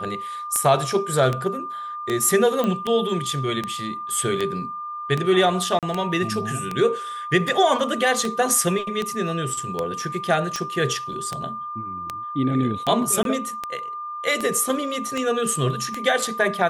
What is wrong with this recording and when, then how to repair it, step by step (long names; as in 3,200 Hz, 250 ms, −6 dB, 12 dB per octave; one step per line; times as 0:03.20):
scratch tick 78 rpm −11 dBFS
whistle 1,200 Hz −29 dBFS
0:02.64: click −12 dBFS
0:05.79–0:05.83: drop-out 37 ms
0:13.23–0:13.25: drop-out 22 ms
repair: click removal
notch filter 1,200 Hz, Q 30
repair the gap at 0:05.79, 37 ms
repair the gap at 0:13.23, 22 ms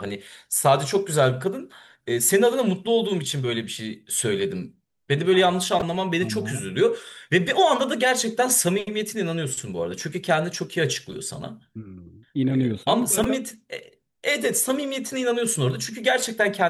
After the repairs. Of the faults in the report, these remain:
none of them is left